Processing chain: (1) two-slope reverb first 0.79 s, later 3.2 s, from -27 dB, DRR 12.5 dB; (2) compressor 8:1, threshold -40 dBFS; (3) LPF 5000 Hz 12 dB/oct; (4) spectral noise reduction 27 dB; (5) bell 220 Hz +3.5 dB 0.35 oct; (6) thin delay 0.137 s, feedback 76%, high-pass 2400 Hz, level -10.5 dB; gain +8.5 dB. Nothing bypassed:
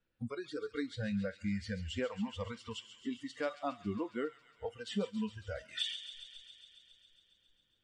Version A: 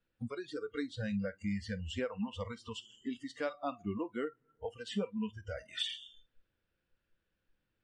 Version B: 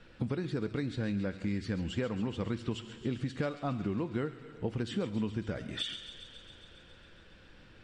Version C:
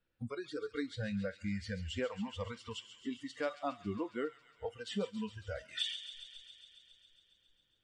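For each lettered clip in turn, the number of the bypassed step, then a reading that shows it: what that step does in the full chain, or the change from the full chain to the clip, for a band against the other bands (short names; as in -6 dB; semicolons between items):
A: 6, momentary loudness spread change -1 LU; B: 4, 125 Hz band +7.5 dB; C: 5, 250 Hz band -2.0 dB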